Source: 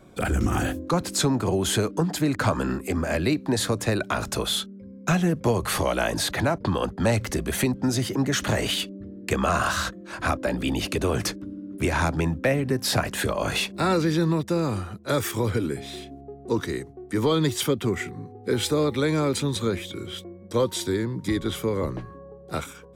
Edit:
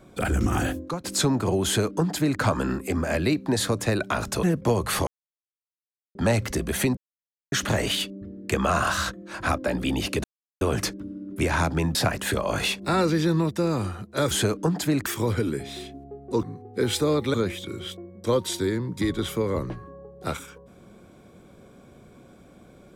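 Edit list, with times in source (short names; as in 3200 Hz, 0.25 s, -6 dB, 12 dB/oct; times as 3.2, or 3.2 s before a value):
0.76–1.04 fade out, to -19 dB
1.65–2.4 copy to 15.23
4.43–5.22 cut
5.86–6.94 mute
7.76–8.31 mute
11.03 insert silence 0.37 s
12.37–12.87 cut
16.6–18.13 cut
19.04–19.61 cut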